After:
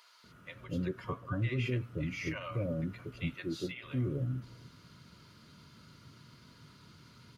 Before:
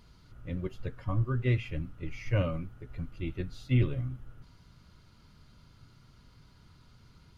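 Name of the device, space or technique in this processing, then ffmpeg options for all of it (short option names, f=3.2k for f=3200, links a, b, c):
PA system with an anti-feedback notch: -filter_complex "[0:a]asettb=1/sr,asplit=3[a][b][c];[a]atrim=end=3.104[d];[b]atrim=start=3.1:end=3.6,asetpts=PTS-STARTPTS,afade=t=in:d=0.004:c=qsin,afade=t=out:st=0.496:d=0.004:c=qsin,highpass=f=300:p=1[e];[c]atrim=start=3.596[f];[d][e]acrossfade=d=0.004:c1=hsin:c2=qsin[g];[g][f]acrossfade=d=0.004:c1=qsin:c2=hsin,highpass=140,asuperstop=centerf=790:order=4:qfactor=7.6,alimiter=level_in=6dB:limit=-24dB:level=0:latency=1:release=139,volume=-6dB,acrossover=split=700[h][i];[h]adelay=240[j];[j][i]amix=inputs=2:normalize=0,volume=5.5dB"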